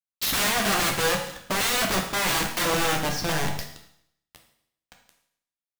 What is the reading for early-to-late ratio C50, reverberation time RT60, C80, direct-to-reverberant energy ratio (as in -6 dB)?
6.5 dB, 0.70 s, 9.5 dB, 1.5 dB